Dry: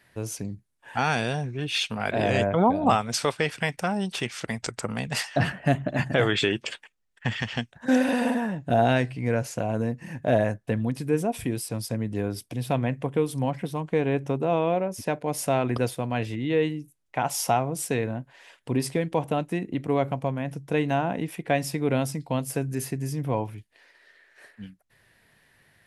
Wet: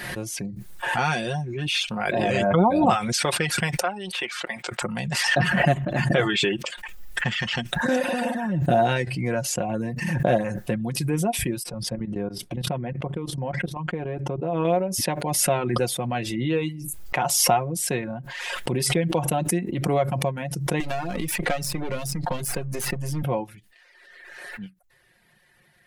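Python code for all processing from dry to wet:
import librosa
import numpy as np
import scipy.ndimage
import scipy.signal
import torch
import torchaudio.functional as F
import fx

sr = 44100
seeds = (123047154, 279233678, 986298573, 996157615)

y = fx.chain(x, sr, fx.highpass(hz=440.0, slope=12),
    fx.high_shelf_res(hz=4300.0, db=-7.0, q=1.5), at=(3.8, 4.82))
y = fx.chain(y, sr, fx.lowpass(hz=1300.0, slope=6),
    fx.level_steps(step_db=14), at=(11.63, 14.65))
y = fx.chain(y, sr, fx.halfwave_gain(db=-12.0),
    fx.band_squash(depth_pct=100), at=(20.8, 23.23))
y = y + 0.59 * np.pad(y, (int(5.6 * sr / 1000.0), 0))[:len(y)]
y = fx.dereverb_blind(y, sr, rt60_s=0.59)
y = fx.pre_swell(y, sr, db_per_s=31.0)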